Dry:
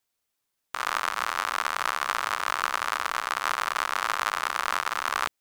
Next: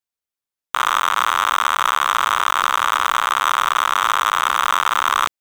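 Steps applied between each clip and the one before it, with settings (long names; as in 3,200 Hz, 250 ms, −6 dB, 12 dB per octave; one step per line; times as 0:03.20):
leveller curve on the samples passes 5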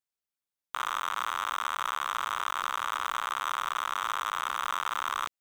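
brickwall limiter −17 dBFS, peak gain reduction 10 dB
level −4.5 dB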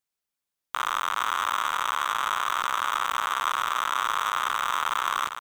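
single-tap delay 455 ms −8 dB
level +4.5 dB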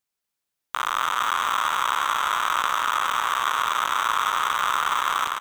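single-tap delay 240 ms −4.5 dB
level +2 dB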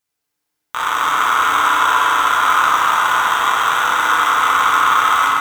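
feedback delay network reverb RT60 2.5 s, low-frequency decay 1.05×, high-frequency decay 0.35×, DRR −4.5 dB
level +3 dB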